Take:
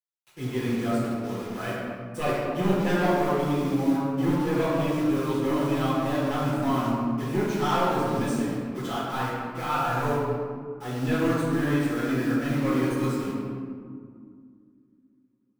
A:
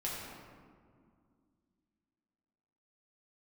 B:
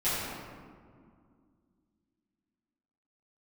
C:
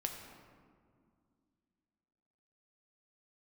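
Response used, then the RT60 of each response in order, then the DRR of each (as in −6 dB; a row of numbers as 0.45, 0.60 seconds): B; 2.1, 2.1, 2.2 seconds; −6.5, −16.0, 2.5 decibels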